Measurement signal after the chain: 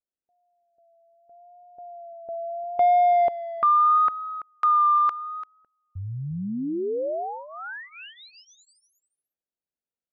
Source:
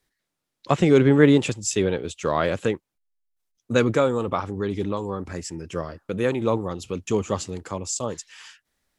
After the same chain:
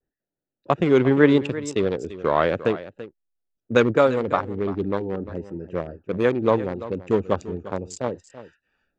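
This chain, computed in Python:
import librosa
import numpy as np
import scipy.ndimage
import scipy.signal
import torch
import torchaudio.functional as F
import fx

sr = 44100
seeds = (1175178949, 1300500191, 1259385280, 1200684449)

p1 = fx.wiener(x, sr, points=41)
p2 = fx.high_shelf(p1, sr, hz=3000.0, db=-8.5)
p3 = fx.rider(p2, sr, range_db=5, speed_s=2.0)
p4 = p2 + (p3 * 10.0 ** (1.0 / 20.0))
p5 = fx.low_shelf(p4, sr, hz=310.0, db=-10.0)
p6 = p5 + 10.0 ** (-15.0 / 20.0) * np.pad(p5, (int(342 * sr / 1000.0), 0))[:len(p5)]
p7 = fx.vibrato(p6, sr, rate_hz=0.76, depth_cents=49.0)
p8 = scipy.signal.sosfilt(scipy.signal.butter(2, 6200.0, 'lowpass', fs=sr, output='sos'), p7)
y = p8 * 10.0 ** (-1.0 / 20.0)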